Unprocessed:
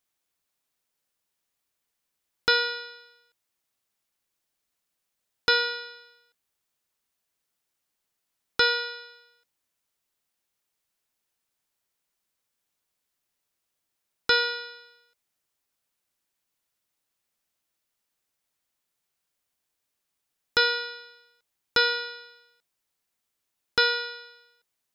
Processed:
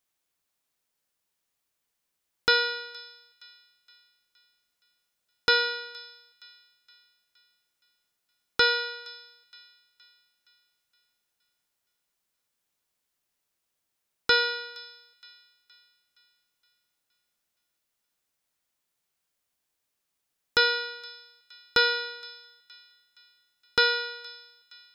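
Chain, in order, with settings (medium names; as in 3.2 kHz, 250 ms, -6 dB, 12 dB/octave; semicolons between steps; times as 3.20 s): feedback echo behind a high-pass 468 ms, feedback 47%, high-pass 2 kHz, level -20 dB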